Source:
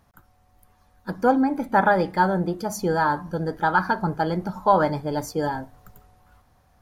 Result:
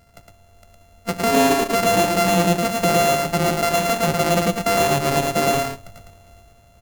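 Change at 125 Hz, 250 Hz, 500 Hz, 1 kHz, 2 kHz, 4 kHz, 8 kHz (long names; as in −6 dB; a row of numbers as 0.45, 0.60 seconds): +5.0, +2.5, +6.0, +1.5, +3.0, +16.5, +16.0 decibels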